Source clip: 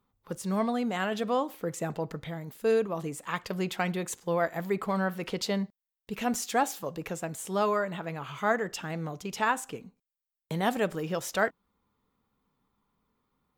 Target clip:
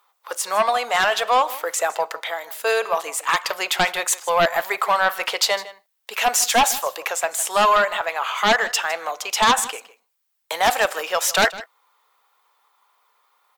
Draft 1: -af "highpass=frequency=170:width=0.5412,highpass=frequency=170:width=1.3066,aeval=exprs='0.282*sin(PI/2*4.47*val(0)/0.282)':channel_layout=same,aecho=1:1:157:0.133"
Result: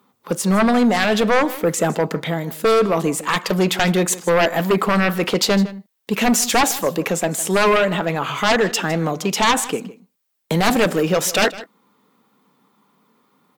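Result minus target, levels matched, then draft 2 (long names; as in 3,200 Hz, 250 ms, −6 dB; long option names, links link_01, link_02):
125 Hz band +18.5 dB
-af "highpass=frequency=670:width=0.5412,highpass=frequency=670:width=1.3066,aeval=exprs='0.282*sin(PI/2*4.47*val(0)/0.282)':channel_layout=same,aecho=1:1:157:0.133"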